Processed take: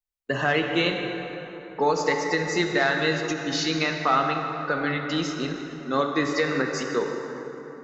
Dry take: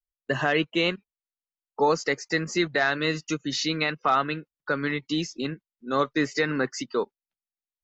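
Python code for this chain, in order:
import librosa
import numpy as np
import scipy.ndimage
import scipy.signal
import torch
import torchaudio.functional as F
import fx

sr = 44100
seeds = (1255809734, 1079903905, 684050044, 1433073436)

y = fx.rev_plate(x, sr, seeds[0], rt60_s=3.8, hf_ratio=0.5, predelay_ms=0, drr_db=2.5)
y = fx.end_taper(y, sr, db_per_s=130.0)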